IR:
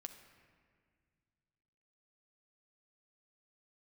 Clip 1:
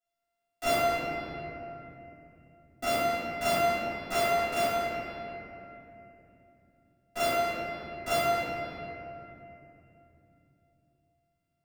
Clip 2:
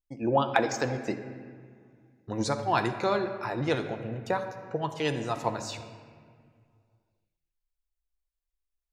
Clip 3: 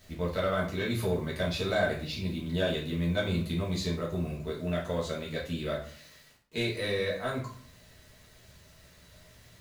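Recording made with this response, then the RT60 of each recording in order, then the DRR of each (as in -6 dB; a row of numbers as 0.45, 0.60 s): 2; 3.0, 1.9, 0.50 s; -21.5, 5.5, -6.0 dB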